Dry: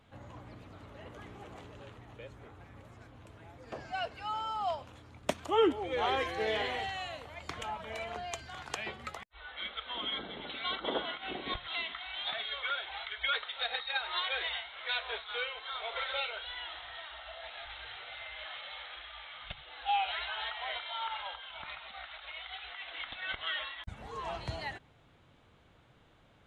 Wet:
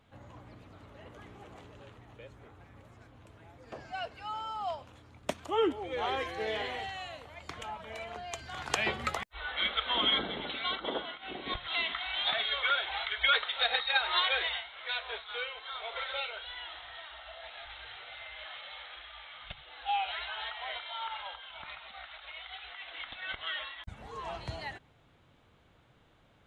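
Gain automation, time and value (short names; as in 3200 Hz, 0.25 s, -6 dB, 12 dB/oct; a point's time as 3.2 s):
8.25 s -2 dB
8.83 s +9 dB
10.1 s +9 dB
11.17 s -4 dB
11.9 s +6 dB
14.25 s +6 dB
14.72 s -1 dB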